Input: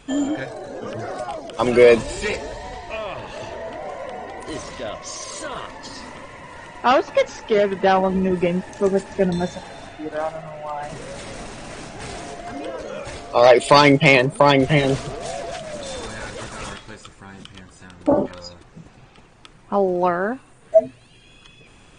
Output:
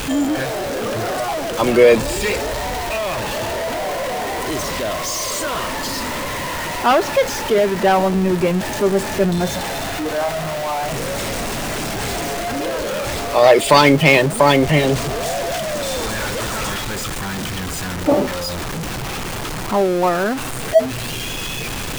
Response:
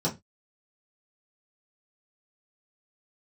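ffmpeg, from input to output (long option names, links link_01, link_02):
-af "aeval=exprs='val(0)+0.5*0.1*sgn(val(0))':channel_layout=same"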